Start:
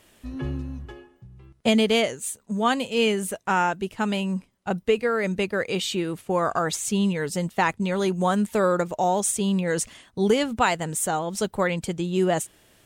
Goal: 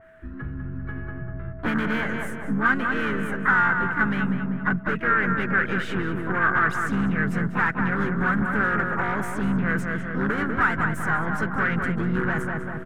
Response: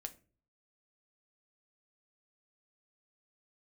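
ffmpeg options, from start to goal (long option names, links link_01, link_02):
-filter_complex "[0:a]aeval=exprs='if(lt(val(0),0),0.708*val(0),val(0))':channel_layout=same,asplit=3[link_01][link_02][link_03];[link_02]asetrate=33038,aresample=44100,atempo=1.33484,volume=-11dB[link_04];[link_03]asetrate=58866,aresample=44100,atempo=0.749154,volume=-7dB[link_05];[link_01][link_04][link_05]amix=inputs=3:normalize=0,aeval=exprs='val(0)+0.01*sin(2*PI*650*n/s)':channel_layout=same,aeval=exprs='0.266*(cos(1*acos(clip(val(0)/0.266,-1,1)))-cos(1*PI/2))+0.075*(cos(5*acos(clip(val(0)/0.266,-1,1)))-cos(5*PI/2))':channel_layout=same,asplit=2[link_06][link_07];[link_07]adelay=196,lowpass=frequency=1900:poles=1,volume=-5dB,asplit=2[link_08][link_09];[link_09]adelay=196,lowpass=frequency=1900:poles=1,volume=0.45,asplit=2[link_10][link_11];[link_11]adelay=196,lowpass=frequency=1900:poles=1,volume=0.45,asplit=2[link_12][link_13];[link_13]adelay=196,lowpass=frequency=1900:poles=1,volume=0.45,asplit=2[link_14][link_15];[link_15]adelay=196,lowpass=frequency=1900:poles=1,volume=0.45,asplit=2[link_16][link_17];[link_17]adelay=196,lowpass=frequency=1900:poles=1,volume=0.45[link_18];[link_06][link_08][link_10][link_12][link_14][link_16][link_18]amix=inputs=7:normalize=0,acompressor=threshold=-29dB:ratio=2.5,firequalizer=gain_entry='entry(110,0);entry(610,-15);entry(1500,10);entry(2500,-11);entry(4400,-26)':delay=0.05:min_phase=1,dynaudnorm=framelen=290:gausssize=7:maxgain=10.5dB,adynamicequalizer=threshold=0.0282:dfrequency=2700:dqfactor=0.7:tfrequency=2700:tqfactor=0.7:attack=5:release=100:ratio=0.375:range=1.5:mode=boostabove:tftype=highshelf,volume=-3.5dB"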